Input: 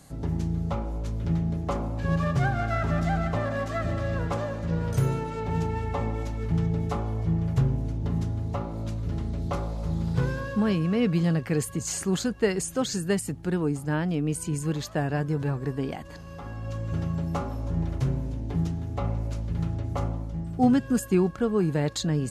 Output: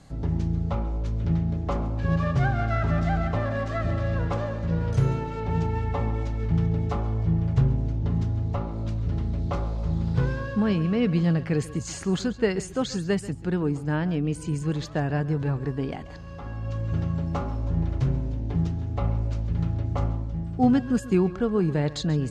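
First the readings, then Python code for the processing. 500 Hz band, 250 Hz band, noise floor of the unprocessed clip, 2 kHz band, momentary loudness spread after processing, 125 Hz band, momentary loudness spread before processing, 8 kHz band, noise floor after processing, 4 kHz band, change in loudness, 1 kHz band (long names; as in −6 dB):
+0.5 dB, +1.0 dB, −40 dBFS, 0.0 dB, 6 LU, +2.5 dB, 7 LU, −6.5 dB, −38 dBFS, −1.0 dB, +1.5 dB, 0.0 dB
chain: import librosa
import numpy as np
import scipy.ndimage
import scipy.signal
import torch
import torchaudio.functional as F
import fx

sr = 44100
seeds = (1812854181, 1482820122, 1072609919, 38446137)

y = scipy.signal.sosfilt(scipy.signal.butter(2, 5500.0, 'lowpass', fs=sr, output='sos'), x)
y = fx.low_shelf(y, sr, hz=76.0, db=7.5)
y = y + 10.0 ** (-17.0 / 20.0) * np.pad(y, (int(136 * sr / 1000.0), 0))[:len(y)]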